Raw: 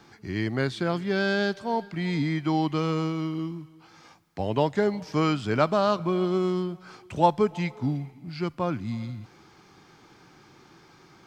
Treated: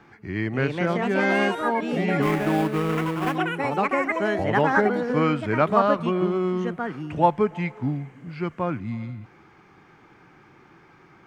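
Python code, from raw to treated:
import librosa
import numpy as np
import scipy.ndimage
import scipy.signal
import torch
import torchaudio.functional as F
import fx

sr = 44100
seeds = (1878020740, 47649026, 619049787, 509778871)

y = fx.echo_pitch(x, sr, ms=350, semitones=5, count=3, db_per_echo=-3.0)
y = fx.sample_hold(y, sr, seeds[0], rate_hz=4200.0, jitter_pct=20, at=(2.22, 3.36))
y = fx.high_shelf_res(y, sr, hz=3100.0, db=-10.0, q=1.5)
y = y * 10.0 ** (1.0 / 20.0)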